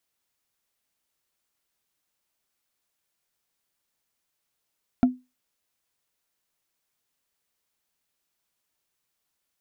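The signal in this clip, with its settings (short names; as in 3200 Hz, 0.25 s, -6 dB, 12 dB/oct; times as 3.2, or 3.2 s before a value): wood hit, lowest mode 252 Hz, decay 0.24 s, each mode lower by 9 dB, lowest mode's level -11 dB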